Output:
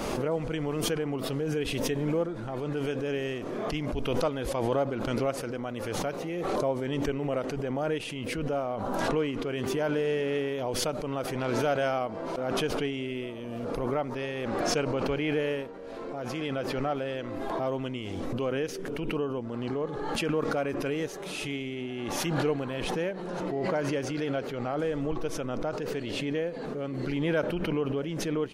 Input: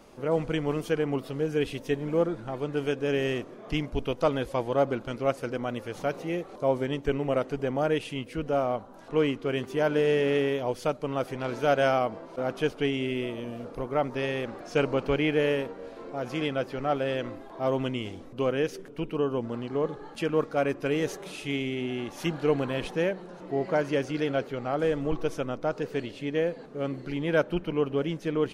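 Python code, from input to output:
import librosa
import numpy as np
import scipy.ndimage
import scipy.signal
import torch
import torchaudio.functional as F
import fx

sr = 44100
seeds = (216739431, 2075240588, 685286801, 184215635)

y = fx.pre_swell(x, sr, db_per_s=21.0)
y = F.gain(torch.from_numpy(y), -4.5).numpy()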